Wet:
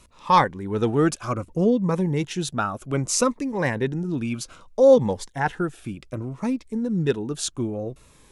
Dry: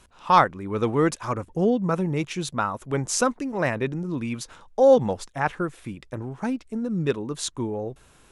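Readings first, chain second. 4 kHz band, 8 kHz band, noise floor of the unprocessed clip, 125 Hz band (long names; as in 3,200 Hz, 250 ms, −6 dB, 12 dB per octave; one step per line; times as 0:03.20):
+2.0 dB, +2.5 dB, −56 dBFS, +2.5 dB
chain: phaser whose notches keep moving one way falling 0.63 Hz
level +2.5 dB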